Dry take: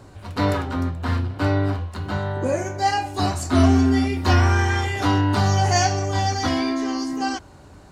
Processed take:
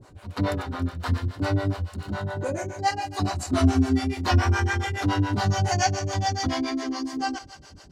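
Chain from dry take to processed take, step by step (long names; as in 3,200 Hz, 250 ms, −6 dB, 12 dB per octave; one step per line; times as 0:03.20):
0:00.99–0:02.14: bass and treble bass +1 dB, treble +6 dB
feedback echo with a high-pass in the loop 92 ms, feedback 85%, high-pass 960 Hz, level −13 dB
two-band tremolo in antiphase 7.1 Hz, depth 100%, crossover 410 Hz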